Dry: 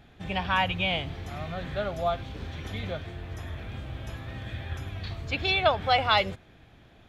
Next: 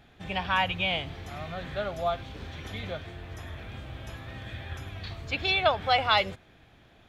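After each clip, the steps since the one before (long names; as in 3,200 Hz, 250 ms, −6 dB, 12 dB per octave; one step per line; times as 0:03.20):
low-shelf EQ 400 Hz −4 dB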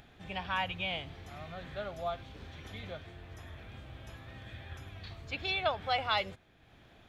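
upward compression, threshold −43 dBFS
level −7.5 dB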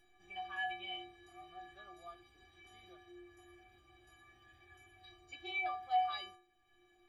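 stiff-string resonator 350 Hz, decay 0.54 s, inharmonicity 0.03
level +8 dB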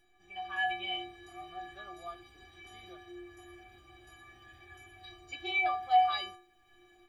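automatic gain control gain up to 8 dB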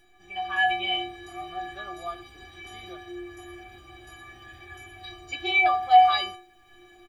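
far-end echo of a speakerphone 100 ms, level −21 dB
level +9 dB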